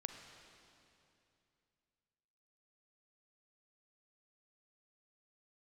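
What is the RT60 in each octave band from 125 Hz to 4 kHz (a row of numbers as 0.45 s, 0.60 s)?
3.2 s, 3.0 s, 2.8 s, 2.6 s, 2.6 s, 2.5 s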